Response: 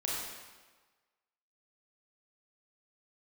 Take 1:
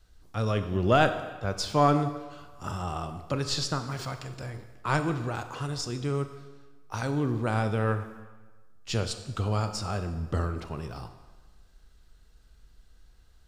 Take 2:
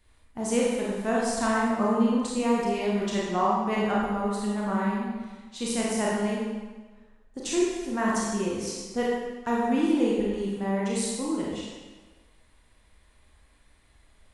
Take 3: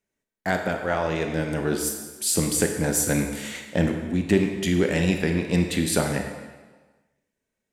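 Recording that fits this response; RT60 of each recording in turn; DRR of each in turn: 2; 1.3 s, 1.4 s, 1.3 s; 8.5 dB, -5.5 dB, 4.0 dB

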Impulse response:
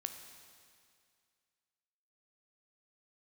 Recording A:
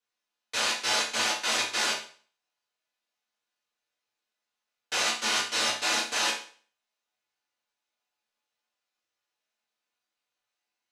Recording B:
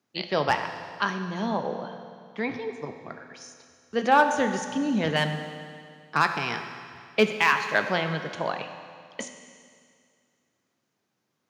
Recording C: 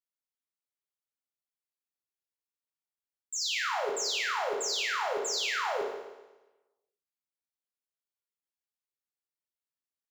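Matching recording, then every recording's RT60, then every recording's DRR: B; 0.45 s, 2.2 s, 1.1 s; -8.0 dB, 6.0 dB, -2.0 dB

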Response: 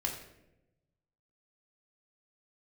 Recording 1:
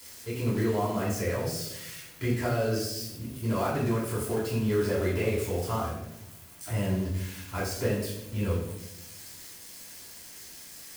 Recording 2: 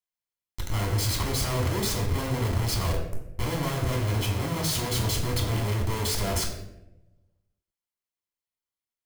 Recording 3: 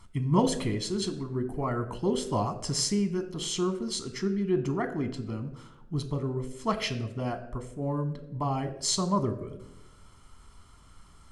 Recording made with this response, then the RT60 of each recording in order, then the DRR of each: 2; 0.90 s, 0.90 s, 0.95 s; -8.5 dB, -1.0 dB, 7.0 dB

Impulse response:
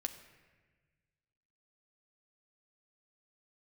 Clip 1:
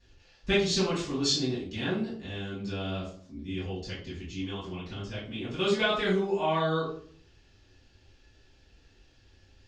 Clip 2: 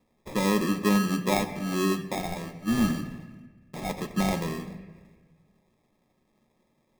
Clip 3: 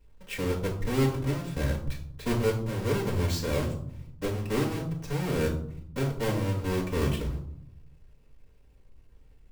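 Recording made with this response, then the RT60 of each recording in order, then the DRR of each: 2; 0.55 s, 1.4 s, 0.70 s; -10.5 dB, 5.5 dB, -4.0 dB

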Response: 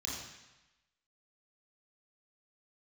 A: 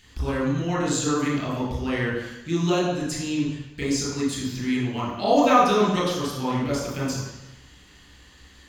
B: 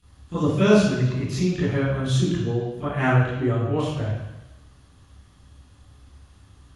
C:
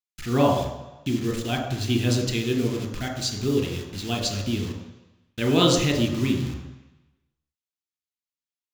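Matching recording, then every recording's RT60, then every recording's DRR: A; 1.0 s, 1.0 s, 1.0 s; -5.0 dB, -13.0 dB, 3.5 dB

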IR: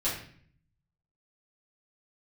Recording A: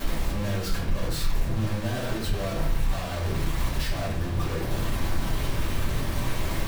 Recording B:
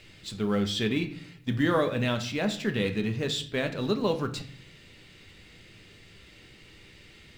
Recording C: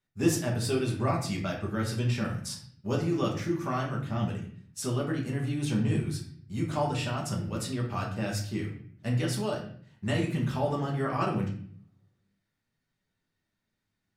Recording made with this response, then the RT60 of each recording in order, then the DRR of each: A; 0.55 s, 0.55 s, 0.55 s; -10.0 dB, 6.5 dB, -2.5 dB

